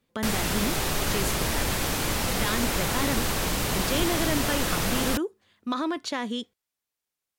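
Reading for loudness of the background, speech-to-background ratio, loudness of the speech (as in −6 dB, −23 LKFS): −26.5 LKFS, −5.0 dB, −31.5 LKFS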